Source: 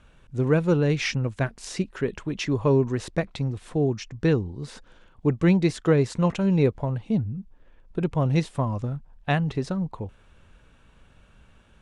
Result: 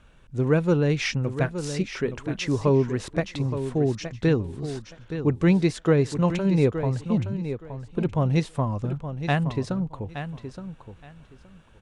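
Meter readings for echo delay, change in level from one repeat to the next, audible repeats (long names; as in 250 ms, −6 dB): 870 ms, −14.5 dB, 2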